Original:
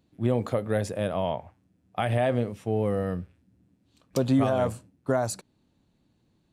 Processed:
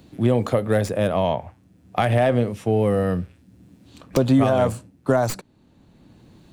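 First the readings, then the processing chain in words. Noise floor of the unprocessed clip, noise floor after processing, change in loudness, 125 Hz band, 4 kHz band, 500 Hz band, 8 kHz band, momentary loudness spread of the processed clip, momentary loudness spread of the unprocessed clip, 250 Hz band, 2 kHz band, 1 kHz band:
-70 dBFS, -57 dBFS, +6.5 dB, +6.5 dB, +6.0 dB, +6.5 dB, +2.5 dB, 11 LU, 13 LU, +6.0 dB, +6.5 dB, +6.5 dB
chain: tracing distortion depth 0.066 ms; three bands compressed up and down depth 40%; trim +6.5 dB

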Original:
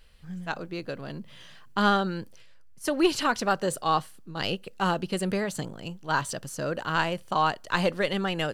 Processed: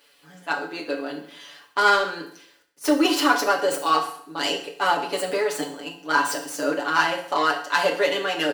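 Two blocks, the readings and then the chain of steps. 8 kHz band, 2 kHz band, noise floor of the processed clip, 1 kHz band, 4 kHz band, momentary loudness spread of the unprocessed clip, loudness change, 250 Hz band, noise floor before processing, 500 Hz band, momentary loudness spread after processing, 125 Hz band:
+5.5 dB, +7.5 dB, -58 dBFS, +5.0 dB, +6.0 dB, 14 LU, +5.0 dB, +2.5 dB, -48 dBFS, +5.0 dB, 13 LU, -12.5 dB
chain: tracing distortion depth 0.059 ms; high-pass 290 Hz 24 dB/octave; comb 7 ms, depth 98%; in parallel at -11 dB: overload inside the chain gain 24.5 dB; on the sum: bit crusher 11-bit; on a send: feedback delay 67 ms, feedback 49%, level -17 dB; on the sum: FDN reverb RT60 0.57 s, low-frequency decay 1.05×, high-frequency decay 0.9×, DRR 2.5 dB

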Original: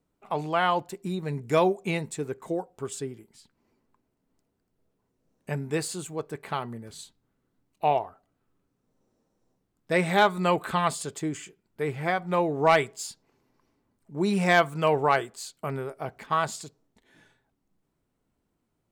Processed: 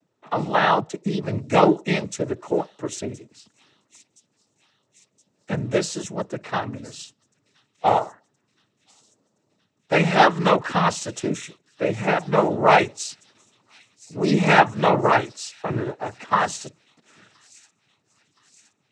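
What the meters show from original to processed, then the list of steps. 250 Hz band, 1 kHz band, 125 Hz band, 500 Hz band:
+6.0 dB, +6.0 dB, +5.5 dB, +4.5 dB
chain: noise-vocoded speech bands 12; feedback echo behind a high-pass 1020 ms, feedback 58%, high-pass 5.2 kHz, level -15.5 dB; trim +6 dB

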